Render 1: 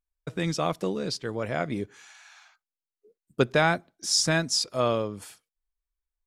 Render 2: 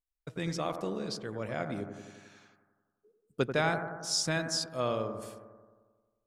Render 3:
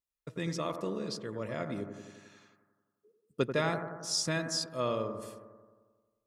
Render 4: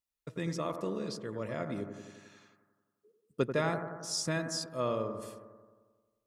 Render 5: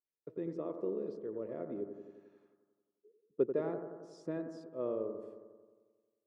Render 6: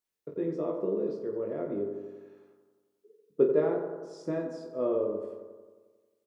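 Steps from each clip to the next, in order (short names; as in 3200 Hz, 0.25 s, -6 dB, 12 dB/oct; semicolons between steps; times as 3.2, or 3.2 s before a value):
analogue delay 89 ms, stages 1024, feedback 66%, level -8 dB; gain -7 dB
notch comb 760 Hz
dynamic EQ 3700 Hz, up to -5 dB, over -48 dBFS, Q 0.82
band-pass 390 Hz, Q 2.6; gain +2.5 dB
reverse bouncing-ball echo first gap 20 ms, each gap 1.4×, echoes 5; gain +5.5 dB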